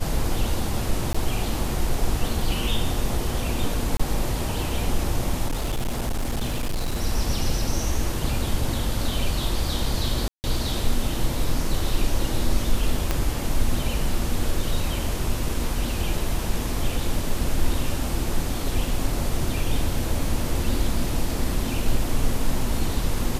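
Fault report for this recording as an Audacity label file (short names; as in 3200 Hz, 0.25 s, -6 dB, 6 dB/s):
1.130000	1.150000	gap 15 ms
3.970000	4.000000	gap 25 ms
5.470000	7.030000	clipped -21 dBFS
10.280000	10.440000	gap 0.159 s
13.110000	13.110000	pop -8 dBFS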